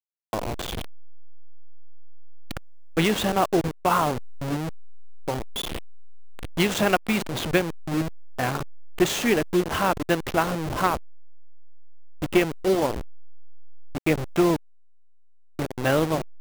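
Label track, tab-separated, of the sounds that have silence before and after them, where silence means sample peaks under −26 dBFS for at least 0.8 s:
2.510000	10.960000	sound
12.220000	13.010000	sound
13.950000	14.560000	sound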